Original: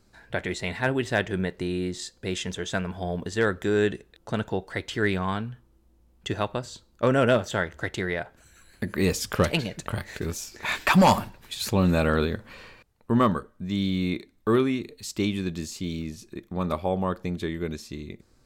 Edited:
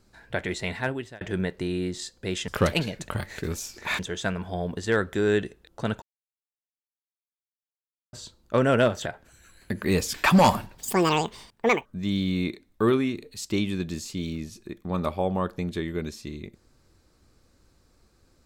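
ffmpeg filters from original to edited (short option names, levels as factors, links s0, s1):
-filter_complex "[0:a]asplit=10[s0][s1][s2][s3][s4][s5][s6][s7][s8][s9];[s0]atrim=end=1.21,asetpts=PTS-STARTPTS,afade=t=out:st=0.71:d=0.5[s10];[s1]atrim=start=1.21:end=2.482,asetpts=PTS-STARTPTS,afade=t=in:d=0.004:c=hsin[s11];[s2]atrim=start=9.258:end=10.772[s12];[s3]atrim=start=2.478:end=4.51,asetpts=PTS-STARTPTS,afade=t=out:st=2.028:d=0.004:c=hsin[s13];[s4]atrim=start=4.51:end=6.62,asetpts=PTS-STARTPTS,volume=0[s14];[s5]atrim=start=6.62:end=7.552,asetpts=PTS-STARTPTS,afade=t=in:d=0.004:c=hsin[s15];[s6]atrim=start=8.178:end=9.262[s16];[s7]atrim=start=10.768:end=11.414[s17];[s8]atrim=start=11.41:end=13.52,asetpts=PTS-STARTPTS,asetrate=86436,aresample=44100[s18];[s9]atrim=start=13.516[s19];[s10][s11]concat=n=2:v=0:a=1[s20];[s20][s12]acrossfade=d=0.004:c1=hsin:c2=hsin[s21];[s13][s14][s15]concat=n=3:v=0:a=1[s22];[s21][s22]acrossfade=d=0.004:c1=hsin:c2=hsin[s23];[s23][s16]acrossfade=d=0.004:c1=hsin:c2=hsin[s24];[s24][s17]acrossfade=d=0.004:c1=hsin:c2=hsin[s25];[s25][s18]acrossfade=d=0.004:c1=hsin:c2=hsin[s26];[s26][s19]acrossfade=d=0.004:c1=hsin:c2=hsin"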